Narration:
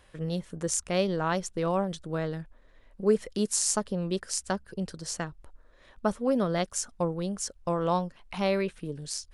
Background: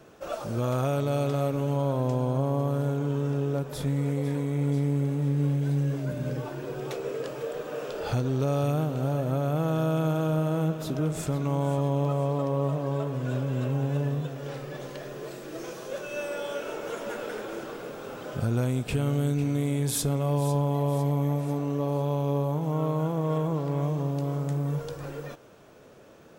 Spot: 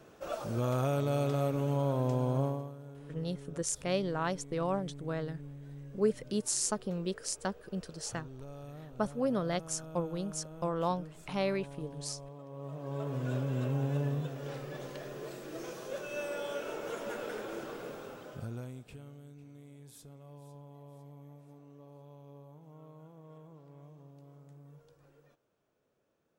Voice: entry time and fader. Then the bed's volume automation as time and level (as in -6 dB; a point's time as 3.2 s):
2.95 s, -5.0 dB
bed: 2.45 s -4 dB
2.76 s -21 dB
12.45 s -21 dB
13.13 s -4.5 dB
17.93 s -4.5 dB
19.21 s -26 dB